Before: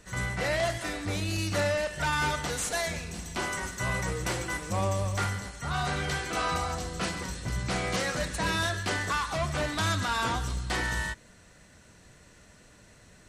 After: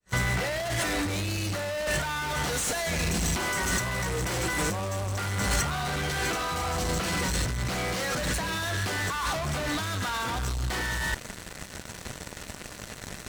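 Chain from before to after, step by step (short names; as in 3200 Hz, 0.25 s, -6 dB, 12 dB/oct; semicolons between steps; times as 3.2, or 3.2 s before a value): opening faded in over 0.66 s; in parallel at -10 dB: fuzz box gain 44 dB, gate -52 dBFS; on the sum: negative-ratio compressor -27 dBFS, ratio -1; gain -2 dB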